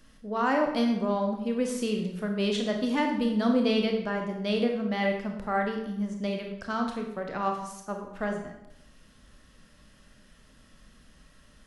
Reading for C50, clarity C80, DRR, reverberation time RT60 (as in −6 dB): 5.5 dB, 8.0 dB, 2.5 dB, 0.80 s